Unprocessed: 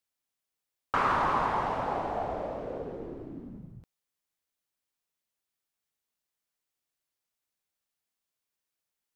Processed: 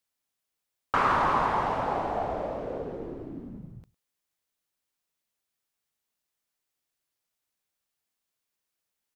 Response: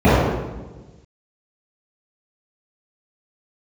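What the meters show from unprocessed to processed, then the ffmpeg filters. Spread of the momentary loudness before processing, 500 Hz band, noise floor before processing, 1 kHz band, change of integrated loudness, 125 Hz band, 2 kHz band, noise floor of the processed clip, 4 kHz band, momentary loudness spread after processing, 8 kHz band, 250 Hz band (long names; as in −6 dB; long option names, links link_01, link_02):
18 LU, +2.5 dB, below −85 dBFS, +2.5 dB, +2.5 dB, +2.5 dB, +2.5 dB, −85 dBFS, +2.5 dB, 18 LU, can't be measured, +2.5 dB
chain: -af "aecho=1:1:106:0.075,volume=2.5dB"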